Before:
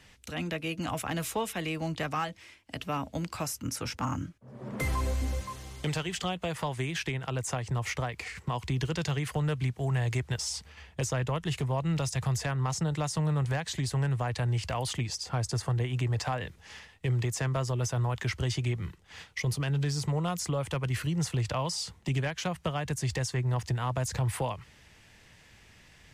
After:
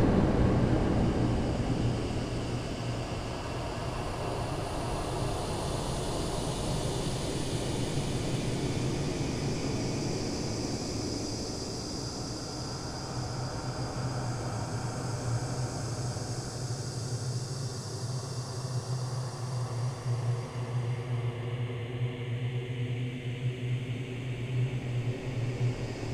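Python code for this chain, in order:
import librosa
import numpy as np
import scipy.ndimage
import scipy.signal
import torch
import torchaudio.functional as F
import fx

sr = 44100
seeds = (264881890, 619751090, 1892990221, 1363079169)

y = fx.dmg_wind(x, sr, seeds[0], corner_hz=380.0, level_db=-28.0)
y = fx.paulstretch(y, sr, seeds[1], factor=16.0, window_s=0.5, from_s=14.46)
y = y * 10.0 ** (-4.0 / 20.0)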